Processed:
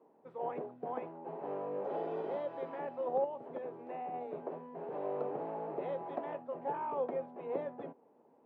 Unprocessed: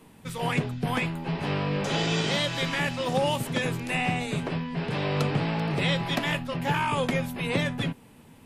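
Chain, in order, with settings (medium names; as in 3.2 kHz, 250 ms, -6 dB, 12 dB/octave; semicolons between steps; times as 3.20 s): Butterworth band-pass 560 Hz, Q 1.1; 3.24–4.14 s: compression 6:1, threshold -33 dBFS, peak gain reduction 8 dB; trim -5 dB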